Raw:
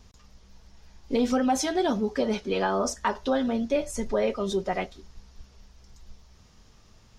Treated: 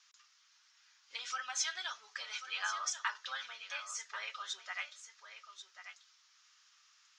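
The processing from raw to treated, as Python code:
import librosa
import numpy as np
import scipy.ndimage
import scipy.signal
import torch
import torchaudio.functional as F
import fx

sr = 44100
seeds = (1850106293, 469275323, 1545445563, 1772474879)

p1 = scipy.signal.sosfilt(scipy.signal.ellip(3, 1.0, 80, [1300.0, 7100.0], 'bandpass', fs=sr, output='sos'), x)
p2 = p1 + fx.echo_single(p1, sr, ms=1088, db=-10.5, dry=0)
y = p2 * librosa.db_to_amplitude(-2.5)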